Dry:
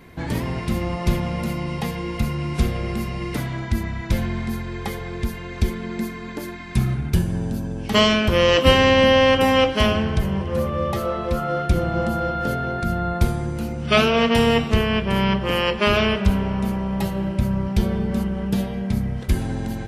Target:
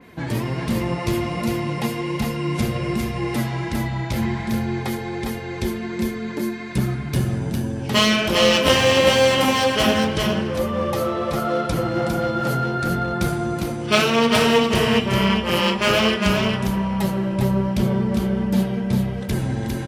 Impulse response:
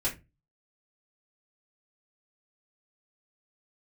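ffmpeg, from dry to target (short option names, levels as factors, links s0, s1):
-filter_complex "[0:a]aeval=exprs='clip(val(0),-1,0.112)':c=same,flanger=delay=4:depth=4.9:regen=34:speed=1.3:shape=sinusoidal,asettb=1/sr,asplit=3[s0][s1][s2];[s0]atrim=end=3.184[s3];[s1]atrim=start=3.18:end=5.26,asetpts=PTS-STARTPTS,afade=t=in:d=0.004:c=qsin,afade=t=out:st=2.076:d=0.004:c=qsin,aeval=exprs='val(0)+0.00794*sin(2*PI*820*n/s)':c=same[s4];[s2]atrim=start=5.256[s5];[s3][s4]acrossfade=d=0.004:c1=hsin:c2=qsin[s6];[s6][s5]acrossfade=d=0.004:c1=qsin:c2=hsin,highpass=75,aecho=1:1:404:0.631,asplit=2[s7][s8];[1:a]atrim=start_sample=2205[s9];[s8][s9]afir=irnorm=-1:irlink=0,volume=0.1[s10];[s7][s10]amix=inputs=2:normalize=0,adynamicequalizer=threshold=0.0126:dfrequency=3800:dqfactor=0.7:tfrequency=3800:tqfactor=0.7:attack=5:release=100:ratio=0.375:range=2.5:mode=boostabove:tftype=highshelf,volume=1.58"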